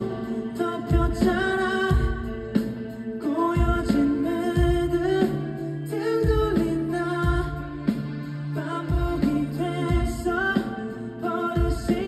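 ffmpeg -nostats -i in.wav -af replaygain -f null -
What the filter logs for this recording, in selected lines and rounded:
track_gain = +6.3 dB
track_peak = 0.296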